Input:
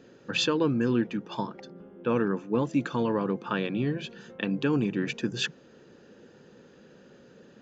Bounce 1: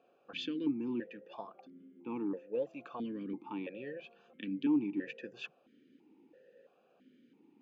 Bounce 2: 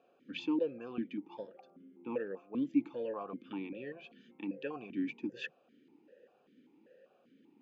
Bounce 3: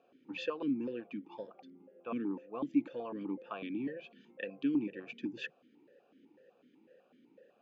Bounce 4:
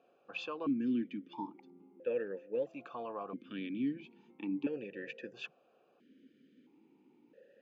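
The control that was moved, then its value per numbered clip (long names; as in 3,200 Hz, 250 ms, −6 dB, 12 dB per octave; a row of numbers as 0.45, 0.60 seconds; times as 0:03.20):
formant filter that steps through the vowels, speed: 3, 5.1, 8, 1.5 Hertz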